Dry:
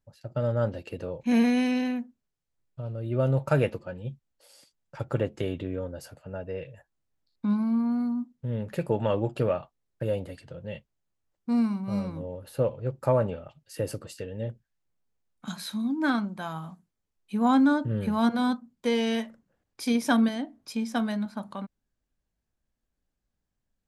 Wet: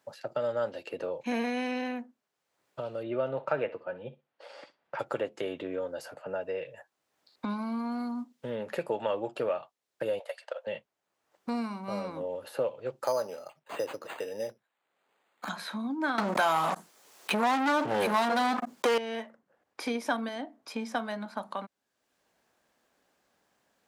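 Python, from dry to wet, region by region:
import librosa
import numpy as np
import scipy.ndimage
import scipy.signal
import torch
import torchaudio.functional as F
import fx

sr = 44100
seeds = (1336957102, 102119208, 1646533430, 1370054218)

y = fx.chain(x, sr, fx.lowpass(hz=2600.0, slope=12),
    fx.room_flutter(wall_m=10.7, rt60_s=0.21), at=(3.03, 4.99))
y = fx.chain(y, sr, fx.ellip_highpass(hz=560.0, order=4, stop_db=50),
    fx.transient(attack_db=12, sustain_db=-2), at=(10.19, 10.67))
y = fx.chain(y, sr, fx.highpass(hz=280.0, slope=6),
    fx.resample_bad(factor=8, down='none', up='hold'), at=(13.04, 15.49))
y = fx.chain(y, sr, fx.bass_treble(bass_db=-8, treble_db=7),
    fx.leveller(passes=5),
    fx.env_flatten(amount_pct=70), at=(16.18, 18.98))
y = scipy.signal.sosfilt(scipy.signal.butter(2, 620.0, 'highpass', fs=sr, output='sos'), y)
y = fx.tilt_eq(y, sr, slope=-2.5)
y = fx.band_squash(y, sr, depth_pct=70)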